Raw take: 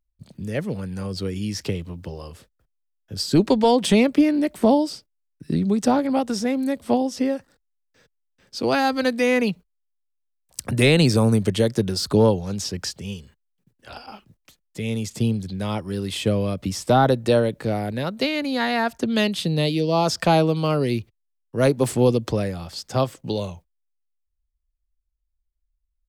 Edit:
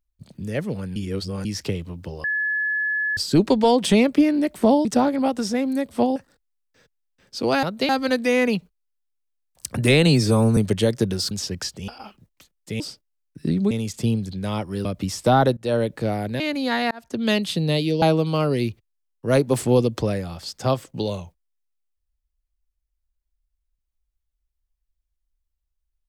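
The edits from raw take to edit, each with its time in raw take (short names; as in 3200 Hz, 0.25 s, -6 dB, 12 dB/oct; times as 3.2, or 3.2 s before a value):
0.96–1.45 reverse
2.24–3.17 bleep 1710 Hz -20.5 dBFS
4.85–5.76 move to 14.88
7.07–7.36 cut
11–11.34 stretch 1.5×
12.08–12.53 cut
13.1–13.96 cut
16.02–16.48 cut
17.2–17.46 fade in, from -22.5 dB
18.03–18.29 move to 8.83
18.8–19.17 fade in
19.91–20.32 cut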